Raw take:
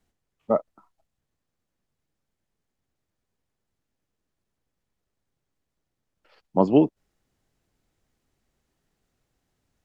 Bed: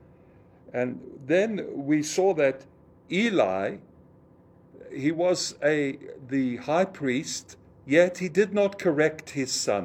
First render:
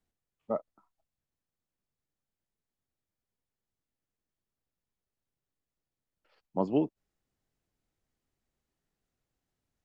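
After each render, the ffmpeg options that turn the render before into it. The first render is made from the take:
-af "volume=-10dB"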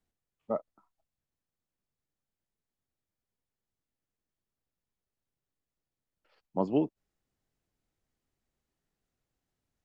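-af anull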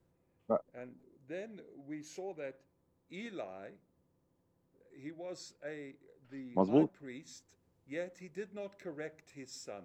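-filter_complex "[1:a]volume=-21dB[a];[0:a][a]amix=inputs=2:normalize=0"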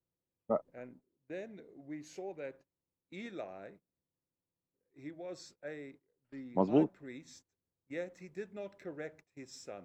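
-af "agate=range=-19dB:threshold=-56dB:ratio=16:detection=peak,highshelf=f=5k:g=-4.5"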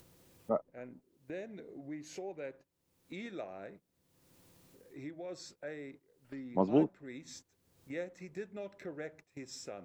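-af "acompressor=mode=upward:threshold=-40dB:ratio=2.5"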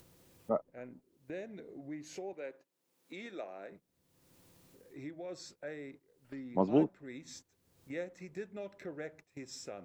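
-filter_complex "[0:a]asettb=1/sr,asplit=3[a][b][c];[a]atrim=end=2.334[d];[b]atrim=start=2.33:end=3.72,asetpts=PTS-STARTPTS,afade=t=in:d=0.004:c=qsin,afade=t=out:st=1.386:d=0.004:c=qsin,highpass=270[e];[c]atrim=start=3.716[f];[d][e]acrossfade=d=0.004:c1=hsin:c2=qsin[g];[g][f]acrossfade=d=0.004:c1=qsin:c2=hsin"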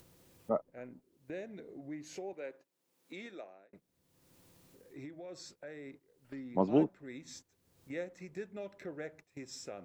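-filter_complex "[0:a]asettb=1/sr,asplit=3[a][b][c];[a]atrim=end=5.054[d];[b]atrim=start=5.05:end=5.86,asetpts=PTS-STARTPTS,afade=t=in:d=0.004:c=qsin,afade=t=out:st=0.806:d=0.004:c=qsin,acompressor=threshold=-45dB:ratio=2:attack=3.2:release=140:knee=1:detection=peak[e];[c]atrim=start=5.856[f];[d][e]acrossfade=d=0.004:c1=hsin:c2=qsin[g];[g][f]acrossfade=d=0.004:c1=qsin:c2=hsin,asplit=2[h][i];[h]atrim=end=3.73,asetpts=PTS-STARTPTS,afade=t=out:st=3.18:d=0.55[j];[i]atrim=start=3.73,asetpts=PTS-STARTPTS,afade=t=in:d=0.004:c=hsin[k];[j][k]concat=n=2:v=0:a=1"

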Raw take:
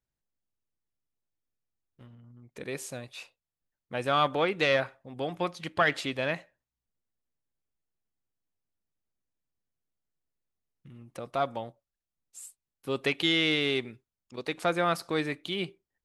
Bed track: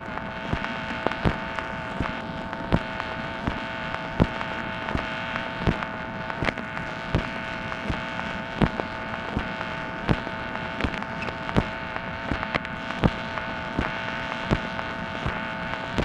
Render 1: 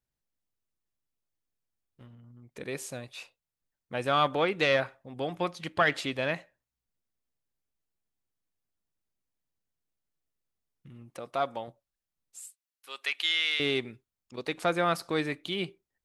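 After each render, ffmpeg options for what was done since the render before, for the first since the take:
-filter_complex "[0:a]asettb=1/sr,asplit=3[a][b][c];[a]atrim=end=11.104[d];[b]atrim=start=11.1:end=11.68,asetpts=PTS-STARTPTS,afade=t=in:d=0.004:c=qsin,afade=t=out:st=0.576:d=0.004:c=qsin,lowshelf=f=180:g=-10[e];[c]atrim=start=11.676[f];[d][e]acrossfade=d=0.004:c1=hsin:c2=qsin[g];[g][f]acrossfade=d=0.004:c1=qsin:c2=hsin,asettb=1/sr,asplit=3[h][i][j];[h]atrim=end=12.404[k];[i]atrim=start=12.4:end=13.6,asetpts=PTS-STARTPTS,afade=t=in:d=0.004:c=qsin,afade=t=out:st=1.196:d=0.004:c=qsin,highpass=1.4k[l];[j]atrim=start=13.596[m];[k][l]acrossfade=d=0.004:c1=hsin:c2=qsin[n];[n][m]acrossfade=d=0.004:c1=qsin:c2=hsin"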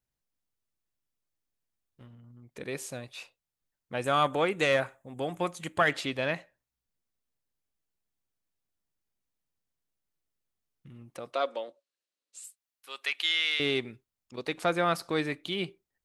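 -filter_complex "[0:a]asettb=1/sr,asplit=3[a][b][c];[a]atrim=end=4.044[d];[b]atrim=start=4.04:end=5.93,asetpts=PTS-STARTPTS,afade=t=in:d=0.004:c=qsin,afade=t=out:st=1.886:d=0.004:c=qsin,highshelf=f=6.1k:t=q:w=3:g=6[e];[c]atrim=start=5.926[f];[d][e]acrossfade=d=0.004:c1=hsin:c2=qsin[g];[g][f]acrossfade=d=0.004:c1=qsin:c2=hsin,asettb=1/sr,asplit=3[h][i][j];[h]atrim=end=11.334[k];[i]atrim=start=11.33:end=12.44,asetpts=PTS-STARTPTS,afade=t=in:d=0.004:c=qsin,afade=t=out:st=1.106:d=0.004:c=qsin,highpass=f=280:w=0.5412,highpass=f=280:w=1.3066,equalizer=f=540:t=q:w=4:g=6,equalizer=f=790:t=q:w=4:g=-8,equalizer=f=2.8k:t=q:w=4:g=4,equalizer=f=4.1k:t=q:w=4:g=6,lowpass=f=9.4k:w=0.5412,lowpass=f=9.4k:w=1.3066[l];[j]atrim=start=12.436[m];[k][l]acrossfade=d=0.004:c1=hsin:c2=qsin[n];[n][m]acrossfade=d=0.004:c1=qsin:c2=hsin"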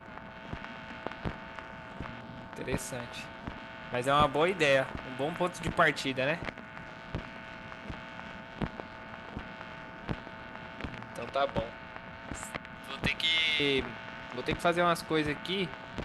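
-filter_complex "[1:a]volume=-13dB[a];[0:a][a]amix=inputs=2:normalize=0"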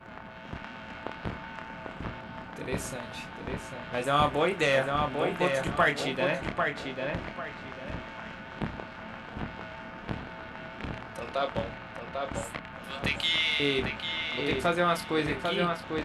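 -filter_complex "[0:a]asplit=2[a][b];[b]adelay=28,volume=-7dB[c];[a][c]amix=inputs=2:normalize=0,asplit=2[d][e];[e]adelay=796,lowpass=f=3.2k:p=1,volume=-4dB,asplit=2[f][g];[g]adelay=796,lowpass=f=3.2k:p=1,volume=0.33,asplit=2[h][i];[i]adelay=796,lowpass=f=3.2k:p=1,volume=0.33,asplit=2[j][k];[k]adelay=796,lowpass=f=3.2k:p=1,volume=0.33[l];[d][f][h][j][l]amix=inputs=5:normalize=0"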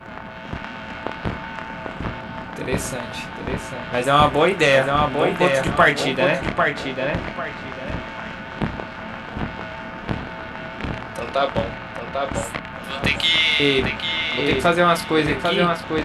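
-af "volume=9.5dB,alimiter=limit=-2dB:level=0:latency=1"

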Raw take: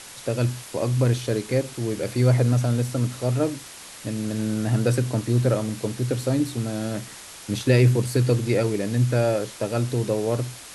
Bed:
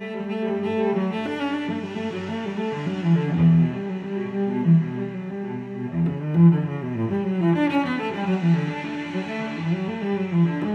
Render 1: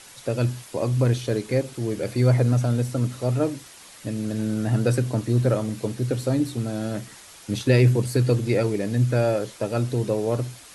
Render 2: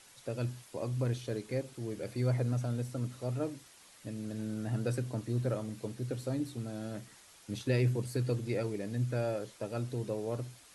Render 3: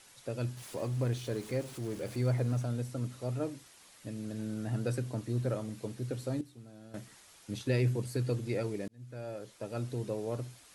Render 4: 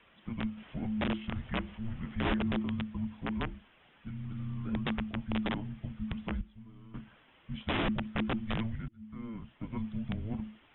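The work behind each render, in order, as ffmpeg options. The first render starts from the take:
-af "afftdn=nr=6:nf=-42"
-af "volume=-12dB"
-filter_complex "[0:a]asettb=1/sr,asplit=3[a][b][c];[a]atrim=end=0.574[d];[b]atrim=start=0.57:end=2.63,asetpts=PTS-STARTPTS,afade=t=in:d=0.004:c=qsin,afade=t=out:st=2.056:d=0.004:c=qsin,aeval=exprs='val(0)+0.5*0.00501*sgn(val(0))':c=same[e];[c]atrim=start=2.626[f];[d][e]acrossfade=d=0.004:c1=hsin:c2=qsin[g];[g][f]acrossfade=d=0.004:c1=qsin:c2=hsin,asplit=4[h][i][j][k];[h]atrim=end=6.412[l];[i]atrim=start=6.408:end=6.942,asetpts=PTS-STARTPTS,volume=-12dB[m];[j]atrim=start=6.938:end=8.88,asetpts=PTS-STARTPTS,afade=t=out:st=1.938:d=0.004:c=hsin[n];[k]atrim=start=8.88,asetpts=PTS-STARTPTS,afade=t=in:d=0.96[o];[l][m]acrossfade=d=0.004:c1=hsin:c2=hsin[p];[n][o]concat=n=2:v=0:a=1[q];[p][q]acrossfade=d=0.004:c1=hsin:c2=hsin"
-af "aresample=8000,aeval=exprs='(mod(17.8*val(0)+1,2)-1)/17.8':c=same,aresample=44100,afreqshift=-340"

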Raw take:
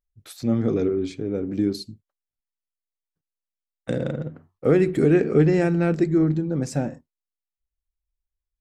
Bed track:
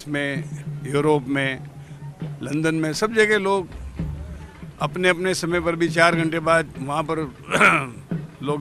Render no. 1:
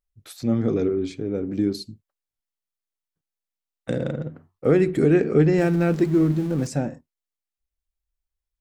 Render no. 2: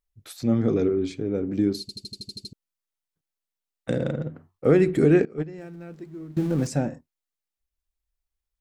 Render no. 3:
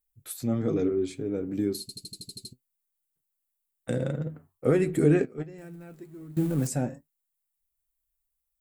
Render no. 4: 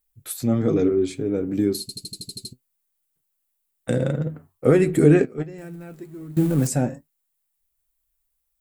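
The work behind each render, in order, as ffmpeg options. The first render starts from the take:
-filter_complex "[0:a]asettb=1/sr,asplit=3[a][b][c];[a]atrim=end=5.584[d];[b]atrim=start=5.58:end=6.67,asetpts=PTS-STARTPTS,afade=t=in:d=0.004:c=qsin,afade=t=out:st=1.086:d=0.004:c=qsin,aeval=exprs='val(0)+0.5*0.0178*sgn(val(0))':c=same[e];[c]atrim=start=6.666[f];[d][e]acrossfade=d=0.004:c1=hsin:c2=qsin[g];[g][f]acrossfade=d=0.004:c1=qsin:c2=hsin"
-filter_complex "[0:a]asettb=1/sr,asplit=3[a][b][c];[a]atrim=end=5.254[d];[b]atrim=start=5.25:end=6.37,asetpts=PTS-STARTPTS,afade=t=in:d=0.004:c=qsin,afade=t=out:st=1.116:d=0.004:c=qsin,agate=range=-20dB:threshold=-13dB:ratio=16:release=100:detection=peak[e];[c]atrim=start=6.366[f];[d][e]acrossfade=d=0.004:c1=hsin:c2=qsin[g];[g][f]acrossfade=d=0.004:c1=qsin:c2=hsin,asplit=10[h][i][j][k][l][m][n][o][p][q];[h]atrim=end=1.892[r];[i]atrim=start=1.808:end=1.892[s];[j]atrim=start=1.808:end=1.892[t];[k]atrim=start=1.808:end=1.892[u];[l]atrim=start=1.808:end=1.892[v];[m]atrim=start=1.808:end=1.892[w];[n]atrim=start=1.808:end=1.892[x];[o]atrim=start=1.808:end=1.892[y];[p]atrim=start=1.808:end=1.892[z];[q]atrim=start=2.528[aa];[r][s]acrossfade=d=0.004:c1=hsin:c2=hsin[ab];[ab][t]acrossfade=d=0.004:c1=hsin:c2=hsin[ac];[ac][u]acrossfade=d=0.004:c1=hsin:c2=hsin[ad];[ad][v]acrossfade=d=0.004:c1=hsin:c2=hsin[ae];[ae][w]acrossfade=d=0.004:c1=hsin:c2=hsin[af];[af][x]acrossfade=d=0.004:c1=hsin:c2=hsin[ag];[ag][y]acrossfade=d=0.004:c1=hsin:c2=hsin[ah];[ah][z]acrossfade=d=0.004:c1=hsin:c2=hsin[ai];[ai][aa]acrossfade=d=0.004:c1=hsin:c2=hsin"
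-af "aexciter=amount=4.4:drive=4.6:freq=7.6k,flanger=delay=6.1:depth=2.2:regen=58:speed=1.4:shape=triangular"
-af "volume=6.5dB"

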